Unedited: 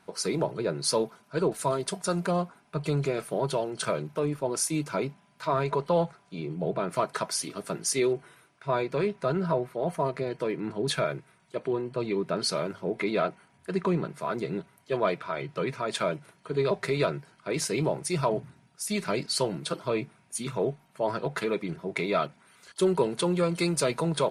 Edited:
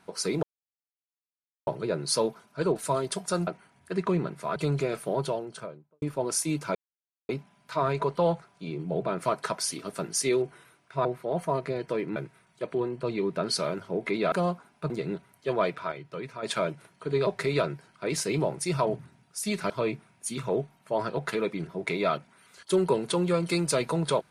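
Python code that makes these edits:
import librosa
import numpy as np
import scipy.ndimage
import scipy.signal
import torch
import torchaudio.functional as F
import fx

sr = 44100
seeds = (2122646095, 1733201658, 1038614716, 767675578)

y = fx.studio_fade_out(x, sr, start_s=3.33, length_s=0.94)
y = fx.edit(y, sr, fx.insert_silence(at_s=0.43, length_s=1.24),
    fx.swap(start_s=2.23, length_s=0.58, other_s=13.25, other_length_s=1.09),
    fx.insert_silence(at_s=5.0, length_s=0.54),
    fx.cut(start_s=8.76, length_s=0.8),
    fx.cut(start_s=10.67, length_s=0.42),
    fx.clip_gain(start_s=15.36, length_s=0.51, db=-7.0),
    fx.cut(start_s=19.14, length_s=0.65), tone=tone)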